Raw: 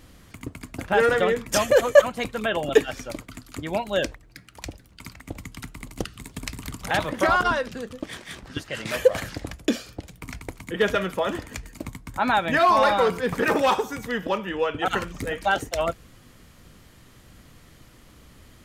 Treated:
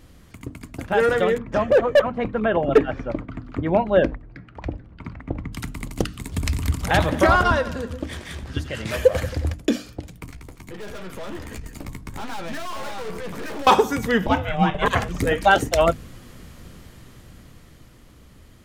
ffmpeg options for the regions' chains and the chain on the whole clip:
-filter_complex "[0:a]asettb=1/sr,asplit=3[s0][s1][s2];[s0]atrim=end=1.384[s3];[s1]atrim=start=1.38:end=5.53,asetpts=PTS-STARTPTS,afade=t=in:d=0.004:c=qsin,afade=t=out:st=4.146:d=0.004:c=qsin,lowpass=1600,asoftclip=type=hard:threshold=0.2[s4];[s2]atrim=start=5.526[s5];[s3][s4]acrossfade=d=0.004:c1=hsin:c2=qsin[s6];[s6][s5]acrossfade=d=0.004:c1=qsin:c2=hsin,asettb=1/sr,asplit=3[s7][s8][s9];[s7]atrim=end=6.324[s10];[s8]atrim=start=6.32:end=9.54,asetpts=PTS-STARTPTS,afade=t=in:d=0.004:c=qsin,afade=t=out:st=3.216:d=0.004:c=qsin,equalizer=f=75:t=o:w=0.55:g=15,acompressor=mode=upward:threshold=0.0282:ratio=2.5:attack=3.2:release=140:knee=2.83:detection=peak,aecho=1:1:90|180|270|360|450|540:0.178|0.101|0.0578|0.0329|0.0188|0.0107,atrim=end_sample=142002[s11];[s9]atrim=start=9.536[s12];[s10][s11]acrossfade=d=0.004:c1=hsin:c2=qsin[s13];[s13][s12]acrossfade=d=0.004:c1=qsin:c2=hsin,asettb=1/sr,asplit=3[s14][s15][s16];[s14]atrim=end=10.264[s17];[s15]atrim=start=10.26:end=13.67,asetpts=PTS-STARTPTS,afade=t=in:d=0.004:c=qsin,afade=t=out:st=3.406:d=0.004:c=qsin,aeval=exprs='(tanh(50.1*val(0)+0.6)-tanh(0.6))/50.1':c=same,acompressor=threshold=0.0126:ratio=5:attack=3.2:release=140:knee=1:detection=peak,asplit=2[s18][s19];[s19]adelay=14,volume=0.355[s20];[s18][s20]amix=inputs=2:normalize=0,atrim=end_sample=150381[s21];[s16]atrim=start=13.666[s22];[s17][s21]acrossfade=d=0.004:c1=hsin:c2=qsin[s23];[s23][s22]acrossfade=d=0.004:c1=qsin:c2=hsin,asettb=1/sr,asplit=3[s24][s25][s26];[s24]atrim=end=14.264[s27];[s25]atrim=start=14.26:end=15.09,asetpts=PTS-STARTPTS,afade=t=in:d=0.004:c=qsin,afade=t=out:st=0.826:d=0.004:c=qsin,highpass=150,aeval=exprs='val(0)*sin(2*PI*300*n/s)':c=same[s28];[s26]atrim=start=15.086[s29];[s27][s28]acrossfade=d=0.004:c1=hsin:c2=qsin[s30];[s30][s29]acrossfade=d=0.004:c1=qsin:c2=hsin,lowshelf=f=490:g=5.5,bandreject=f=50:t=h:w=6,bandreject=f=100:t=h:w=6,bandreject=f=150:t=h:w=6,bandreject=f=200:t=h:w=6,bandreject=f=250:t=h:w=6,bandreject=f=300:t=h:w=6,dynaudnorm=f=110:g=31:m=3.76,volume=0.75"

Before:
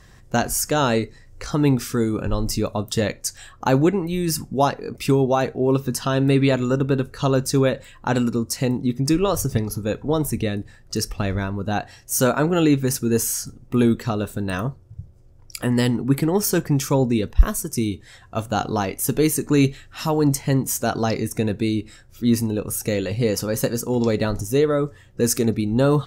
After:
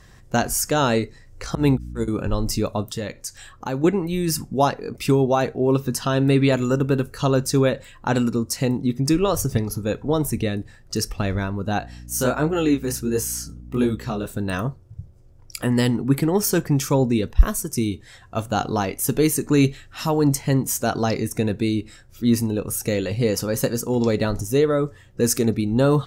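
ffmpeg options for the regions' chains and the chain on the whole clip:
-filter_complex "[0:a]asettb=1/sr,asplit=3[s0][s1][s2];[s0]atrim=end=1.554[s3];[s1]atrim=start=1.55:end=2.08,asetpts=PTS-STARTPTS,afade=t=in:d=0.004:c=qsin,afade=t=out:st=0.526:d=0.004:c=qsin,equalizer=f=10000:w=0.49:g=4,agate=range=0.0178:threshold=0.112:ratio=16:release=100:detection=peak,aeval=exprs='val(0)+0.0251*(sin(2*PI*60*n/s)+sin(2*PI*2*60*n/s)/2+sin(2*PI*3*60*n/s)/3+sin(2*PI*4*60*n/s)/4+sin(2*PI*5*60*n/s)/5)':c=same[s4];[s2]atrim=start=2.076[s5];[s3][s4]acrossfade=d=0.004:c1=hsin:c2=qsin[s6];[s6][s5]acrossfade=d=0.004:c1=qsin:c2=hsin,asettb=1/sr,asplit=3[s7][s8][s9];[s7]atrim=end=2.884[s10];[s8]atrim=start=2.88:end=3.84,asetpts=PTS-STARTPTS,afade=t=in:d=0.004:c=qsin,afade=t=out:st=0.956:d=0.004:c=qsin,bandreject=f=690:w=11,acompressor=threshold=0.0141:ratio=1.5:attack=3.2:release=140:knee=1:detection=peak[s11];[s9]atrim=start=3.836[s12];[s10][s11]acrossfade=d=0.004:c1=hsin:c2=qsin[s13];[s13][s12]acrossfade=d=0.004:c1=qsin:c2=hsin,asettb=1/sr,asplit=3[s14][s15][s16];[s14]atrim=end=6.524[s17];[s15]atrim=start=6.52:end=7.22,asetpts=PTS-STARTPTS,afade=t=in:d=0.004:c=qsin,afade=t=out:st=0.696:d=0.004:c=qsin,highshelf=f=8500:g=10,bandreject=f=3700:w=14[s18];[s16]atrim=start=7.216[s19];[s17][s18]acrossfade=d=0.004:c1=hsin:c2=qsin[s20];[s20][s19]acrossfade=d=0.004:c1=qsin:c2=hsin,asettb=1/sr,asplit=3[s21][s22][s23];[s21]atrim=end=11.804[s24];[s22]atrim=start=11.8:end=14.26,asetpts=PTS-STARTPTS,afade=t=in:d=0.004:c=qsin,afade=t=out:st=2.456:d=0.004:c=qsin,flanger=delay=19:depth=7.3:speed=1.4,aeval=exprs='val(0)+0.0126*(sin(2*PI*60*n/s)+sin(2*PI*2*60*n/s)/2+sin(2*PI*3*60*n/s)/3+sin(2*PI*4*60*n/s)/4+sin(2*PI*5*60*n/s)/5)':c=same[s25];[s23]atrim=start=14.256[s26];[s24][s25]acrossfade=d=0.004:c1=hsin:c2=qsin[s27];[s27][s26]acrossfade=d=0.004:c1=qsin:c2=hsin"

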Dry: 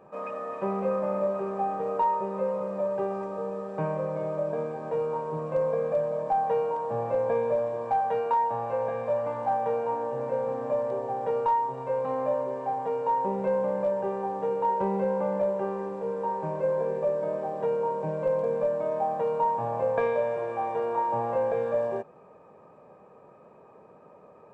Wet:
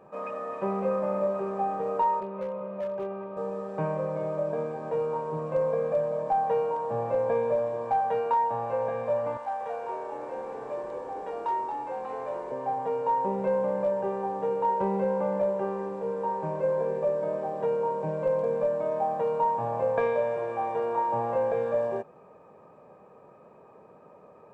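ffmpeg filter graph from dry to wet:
-filter_complex "[0:a]asettb=1/sr,asplit=3[s0][s1][s2];[s0]atrim=end=2.204[s3];[s1]atrim=start=2.2:end=3.37,asetpts=PTS-STARTPTS,afade=t=in:d=0.004:c=qsin,afade=t=out:st=1.166:d=0.004:c=qsin,highpass=130,equalizer=f=170:t=q:w=4:g=-4,equalizer=f=290:t=q:w=4:g=-7,equalizer=f=470:t=q:w=4:g=-7,equalizer=f=810:t=q:w=4:g=-8,equalizer=f=1200:t=q:w=4:g=-3,equalizer=f=1800:t=q:w=4:g=-7,lowpass=f=3000:w=0.5412,lowpass=f=3000:w=1.3066,asoftclip=type=hard:threshold=0.0447[s4];[s2]atrim=start=3.366[s5];[s3][s4]acrossfade=d=0.004:c1=hsin:c2=qsin[s6];[s6][s5]acrossfade=d=0.004:c1=qsin:c2=hsin,asettb=1/sr,asplit=3[s7][s8][s9];[s7]atrim=end=9.374[s10];[s8]atrim=start=9.37:end=12.52,asetpts=PTS-STARTPTS,afade=t=in:d=0.004:c=qsin,afade=t=out:st=3.146:d=0.004:c=qsin,highpass=f=1300:p=1,asplit=7[s11][s12][s13][s14][s15][s16][s17];[s12]adelay=227,afreqshift=-84,volume=0.501[s18];[s13]adelay=454,afreqshift=-168,volume=0.24[s19];[s14]adelay=681,afreqshift=-252,volume=0.115[s20];[s15]adelay=908,afreqshift=-336,volume=0.0556[s21];[s16]adelay=1135,afreqshift=-420,volume=0.0266[s22];[s17]adelay=1362,afreqshift=-504,volume=0.0127[s23];[s11][s18][s19][s20][s21][s22][s23]amix=inputs=7:normalize=0,atrim=end_sample=138915[s24];[s9]atrim=start=12.516[s25];[s10][s24]acrossfade=d=0.004:c1=hsin:c2=qsin[s26];[s26][s25]acrossfade=d=0.004:c1=qsin:c2=hsin"

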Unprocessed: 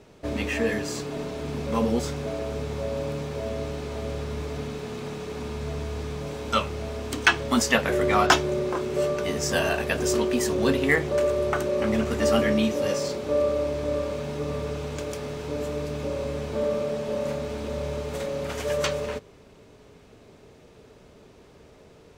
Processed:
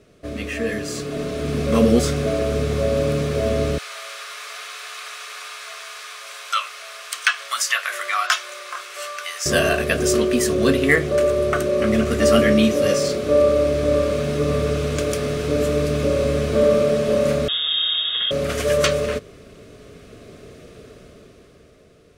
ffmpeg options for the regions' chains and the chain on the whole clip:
-filter_complex "[0:a]asettb=1/sr,asplit=3[s0][s1][s2];[s0]atrim=end=3.784[s3];[s1]atrim=start=3.78:end=9.46,asetpts=PTS-STARTPTS,afade=t=in:d=0.004:c=qsin,afade=t=out:st=5.676:d=0.004:c=qsin,highpass=f=970:w=0.5412,highpass=f=970:w=1.3066,acompressor=threshold=0.0251:ratio=1.5:attack=3.2:release=140:knee=1:detection=peak[s4];[s2]atrim=start=9.456[s5];[s3][s4]acrossfade=d=0.004:c1=hsin:c2=qsin[s6];[s6][s5]acrossfade=d=0.004:c1=qsin:c2=hsin,asettb=1/sr,asplit=3[s7][s8][s9];[s7]atrim=end=17.484[s10];[s8]atrim=start=17.48:end=18.31,asetpts=PTS-STARTPTS,afade=t=in:d=0.004:c=qsin,afade=t=out:st=0.826:d=0.004:c=qsin,asuperstop=centerf=1400:order=20:qfactor=4,lowpass=f=3200:t=q:w=0.5098,lowpass=f=3200:t=q:w=0.6013,lowpass=f=3200:t=q:w=0.9,lowpass=f=3200:t=q:w=2.563,afreqshift=-3800[s11];[s9]atrim=start=18.306[s12];[s10][s11]acrossfade=d=0.004:c1=hsin:c2=qsin[s13];[s13][s12]acrossfade=d=0.004:c1=qsin:c2=hsin,superequalizer=9b=0.251:16b=1.58,dynaudnorm=f=150:g=17:m=3.76,volume=0.891"

